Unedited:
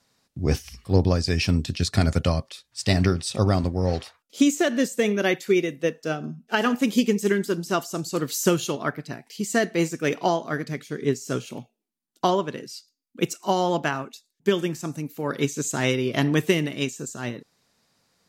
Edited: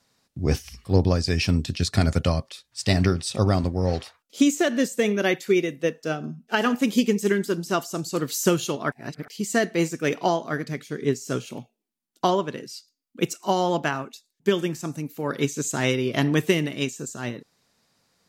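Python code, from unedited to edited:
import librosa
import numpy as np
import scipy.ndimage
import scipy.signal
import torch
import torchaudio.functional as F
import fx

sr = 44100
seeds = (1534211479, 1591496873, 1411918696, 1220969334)

y = fx.edit(x, sr, fx.reverse_span(start_s=8.92, length_s=0.36), tone=tone)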